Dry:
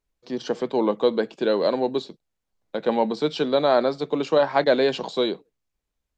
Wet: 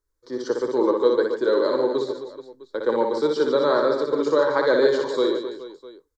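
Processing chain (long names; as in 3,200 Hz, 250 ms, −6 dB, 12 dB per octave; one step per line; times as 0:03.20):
phaser with its sweep stopped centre 720 Hz, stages 6
on a send: reverse bouncing-ball delay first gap 60 ms, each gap 1.4×, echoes 5
on the sum: level +2 dB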